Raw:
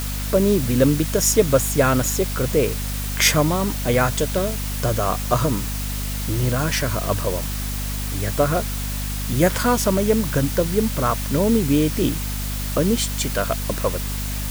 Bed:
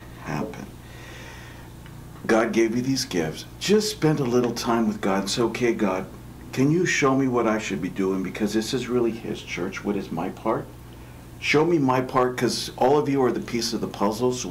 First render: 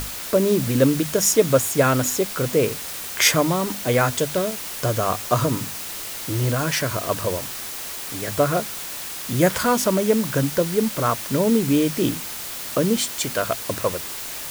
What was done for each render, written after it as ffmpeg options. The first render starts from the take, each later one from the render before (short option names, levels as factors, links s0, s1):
-af "bandreject=f=50:t=h:w=6,bandreject=f=100:t=h:w=6,bandreject=f=150:t=h:w=6,bandreject=f=200:t=h:w=6,bandreject=f=250:t=h:w=6"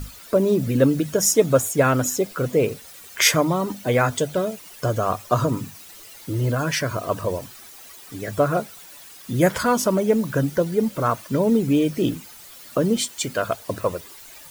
-af "afftdn=nr=14:nf=-32"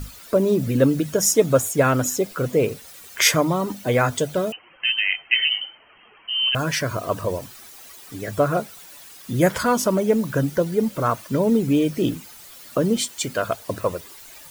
-filter_complex "[0:a]asettb=1/sr,asplit=3[s0][s1][s2];[s0]atrim=end=4.524[s3];[s1]atrim=start=4.52:end=6.55,asetpts=PTS-STARTPTS,afade=t=in:d=0.004:c=qsin,afade=t=out:st=2.026:d=0.004:c=qsin,lowpass=f=2700:t=q:w=0.5098,lowpass=f=2700:t=q:w=0.6013,lowpass=f=2700:t=q:w=0.9,lowpass=f=2700:t=q:w=2.563,afreqshift=-3200[s4];[s2]atrim=start=6.546[s5];[s3][s4]acrossfade=d=0.004:c1=hsin:c2=qsin[s6];[s6][s5]acrossfade=d=0.004:c1=qsin:c2=hsin"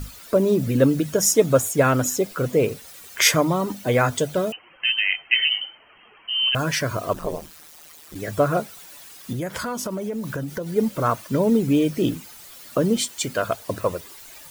-filter_complex "[0:a]asplit=3[s0][s1][s2];[s0]afade=t=out:st=7.13:d=0.02[s3];[s1]aeval=exprs='val(0)*sin(2*PI*78*n/s)':c=same,afade=t=in:st=7.13:d=0.02,afade=t=out:st=8.14:d=0.02[s4];[s2]afade=t=in:st=8.14:d=0.02[s5];[s3][s4][s5]amix=inputs=3:normalize=0,asettb=1/sr,asplit=3[s6][s7][s8];[s6]atrim=end=9.324[s9];[s7]atrim=start=9.32:end=10.76,asetpts=PTS-STARTPTS,afade=t=in:d=0.004:c=qsin,afade=t=out:st=1.436:d=0.004:c=qsin,acompressor=threshold=0.0562:ratio=6:attack=3.2:release=140:knee=1:detection=peak[s10];[s8]atrim=start=10.756[s11];[s9][s10]acrossfade=d=0.004:c1=hsin:c2=qsin[s12];[s12][s11]acrossfade=d=0.004:c1=qsin:c2=hsin"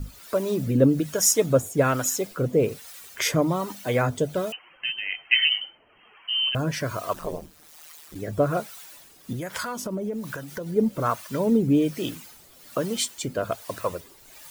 -filter_complex "[0:a]acrossover=split=670[s0][s1];[s0]aeval=exprs='val(0)*(1-0.7/2+0.7/2*cos(2*PI*1.2*n/s))':c=same[s2];[s1]aeval=exprs='val(0)*(1-0.7/2-0.7/2*cos(2*PI*1.2*n/s))':c=same[s3];[s2][s3]amix=inputs=2:normalize=0"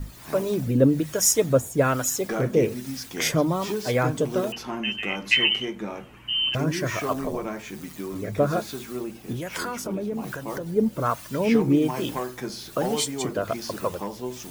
-filter_complex "[1:a]volume=0.316[s0];[0:a][s0]amix=inputs=2:normalize=0"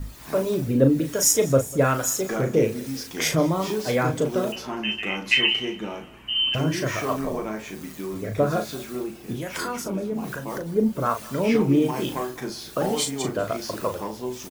-filter_complex "[0:a]asplit=2[s0][s1];[s1]adelay=37,volume=0.447[s2];[s0][s2]amix=inputs=2:normalize=0,aecho=1:1:196|392|588:0.0841|0.0362|0.0156"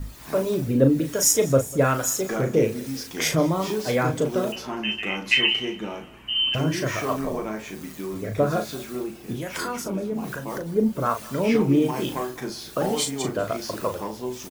-af anull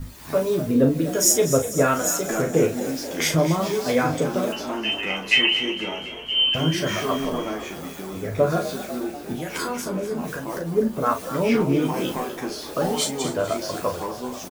-filter_complex "[0:a]asplit=2[s0][s1];[s1]adelay=12,volume=0.562[s2];[s0][s2]amix=inputs=2:normalize=0,asplit=8[s3][s4][s5][s6][s7][s8][s9][s10];[s4]adelay=246,afreqshift=47,volume=0.237[s11];[s5]adelay=492,afreqshift=94,volume=0.15[s12];[s6]adelay=738,afreqshift=141,volume=0.0944[s13];[s7]adelay=984,afreqshift=188,volume=0.0596[s14];[s8]adelay=1230,afreqshift=235,volume=0.0372[s15];[s9]adelay=1476,afreqshift=282,volume=0.0234[s16];[s10]adelay=1722,afreqshift=329,volume=0.0148[s17];[s3][s11][s12][s13][s14][s15][s16][s17]amix=inputs=8:normalize=0"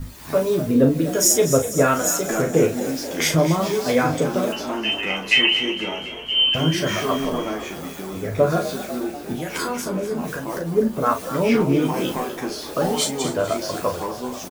-af "volume=1.26,alimiter=limit=0.708:level=0:latency=1"